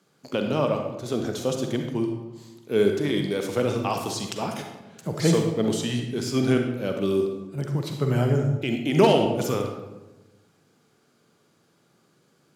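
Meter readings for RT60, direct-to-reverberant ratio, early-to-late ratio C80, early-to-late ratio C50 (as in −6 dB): 1.1 s, 3.5 dB, 7.0 dB, 4.5 dB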